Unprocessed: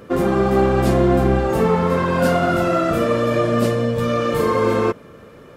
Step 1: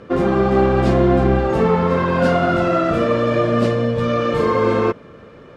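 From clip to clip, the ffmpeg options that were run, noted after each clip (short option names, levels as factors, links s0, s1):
-af "lowpass=4800,volume=1.12"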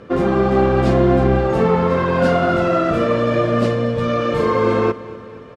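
-af "aecho=1:1:239|478|717|956|1195:0.119|0.0677|0.0386|0.022|0.0125"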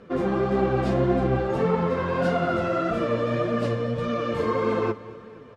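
-af "flanger=delay=4:depth=6.9:regen=38:speed=1.7:shape=triangular,volume=0.631"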